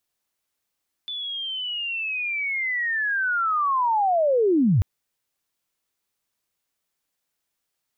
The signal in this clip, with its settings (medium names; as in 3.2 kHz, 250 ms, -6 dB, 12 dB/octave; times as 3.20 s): sweep linear 3.5 kHz -> 80 Hz -28.5 dBFS -> -15 dBFS 3.74 s